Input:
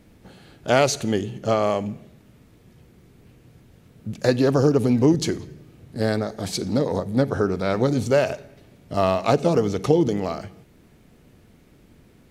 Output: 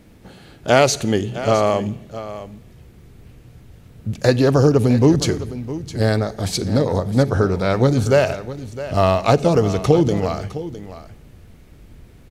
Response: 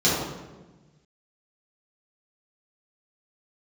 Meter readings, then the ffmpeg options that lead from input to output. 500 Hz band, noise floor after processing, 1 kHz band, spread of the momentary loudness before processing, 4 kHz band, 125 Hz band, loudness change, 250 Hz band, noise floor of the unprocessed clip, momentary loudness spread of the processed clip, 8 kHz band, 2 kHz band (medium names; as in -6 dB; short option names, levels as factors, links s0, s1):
+4.0 dB, -46 dBFS, +4.5 dB, 14 LU, +4.5 dB, +7.0 dB, +4.0 dB, +3.0 dB, -54 dBFS, 16 LU, +4.5 dB, +4.5 dB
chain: -filter_complex "[0:a]asubboost=boost=3:cutoff=110,asplit=2[s0][s1];[s1]aecho=0:1:660:0.2[s2];[s0][s2]amix=inputs=2:normalize=0,volume=1.68"